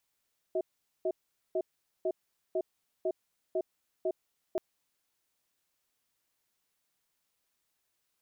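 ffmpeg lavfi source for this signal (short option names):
-f lavfi -i "aevalsrc='0.0316*(sin(2*PI*371*t)+sin(2*PI*641*t))*clip(min(mod(t,0.5),0.06-mod(t,0.5))/0.005,0,1)':d=4.03:s=44100"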